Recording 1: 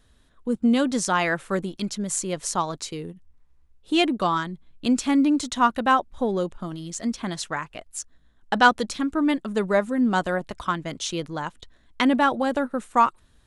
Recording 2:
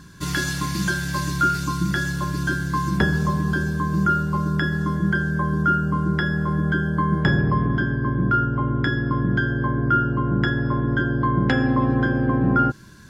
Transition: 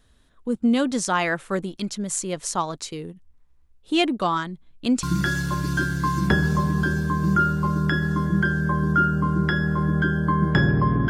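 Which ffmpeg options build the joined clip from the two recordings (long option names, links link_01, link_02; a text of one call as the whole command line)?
ffmpeg -i cue0.wav -i cue1.wav -filter_complex "[0:a]apad=whole_dur=11.09,atrim=end=11.09,atrim=end=5.032[link_01];[1:a]atrim=start=1.728:end=7.79[link_02];[link_01][link_02]acrossfade=duration=0.004:curve1=hsin:curve2=hsin" out.wav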